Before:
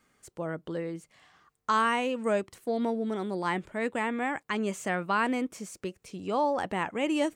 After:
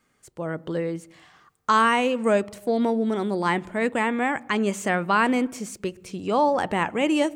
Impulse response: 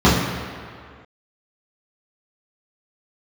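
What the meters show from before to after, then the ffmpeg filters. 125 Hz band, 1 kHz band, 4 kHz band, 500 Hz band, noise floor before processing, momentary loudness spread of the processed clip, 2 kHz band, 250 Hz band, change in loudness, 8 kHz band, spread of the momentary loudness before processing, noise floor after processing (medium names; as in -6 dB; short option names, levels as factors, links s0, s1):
+7.0 dB, +6.5 dB, +6.5 dB, +6.5 dB, -76 dBFS, 12 LU, +6.5 dB, +7.0 dB, +6.5 dB, +6.5 dB, 12 LU, -68 dBFS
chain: -filter_complex "[0:a]dynaudnorm=f=300:g=3:m=2.11,asplit=2[s0][s1];[1:a]atrim=start_sample=2205,afade=t=out:st=0.26:d=0.01,atrim=end_sample=11907,asetrate=29988,aresample=44100[s2];[s1][s2]afir=irnorm=-1:irlink=0,volume=0.00376[s3];[s0][s3]amix=inputs=2:normalize=0"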